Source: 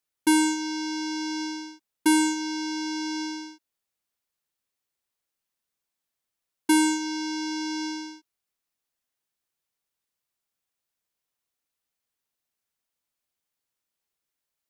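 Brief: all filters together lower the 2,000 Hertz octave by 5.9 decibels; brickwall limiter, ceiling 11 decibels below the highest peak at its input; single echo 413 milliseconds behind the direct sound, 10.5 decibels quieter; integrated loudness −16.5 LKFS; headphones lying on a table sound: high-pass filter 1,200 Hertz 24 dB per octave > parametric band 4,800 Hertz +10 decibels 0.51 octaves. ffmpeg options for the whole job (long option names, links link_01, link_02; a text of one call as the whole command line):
ffmpeg -i in.wav -af "equalizer=frequency=2000:width_type=o:gain=-8.5,alimiter=level_in=2dB:limit=-24dB:level=0:latency=1,volume=-2dB,highpass=frequency=1200:width=0.5412,highpass=frequency=1200:width=1.3066,equalizer=frequency=4800:width_type=o:width=0.51:gain=10,aecho=1:1:413:0.299,volume=16.5dB" out.wav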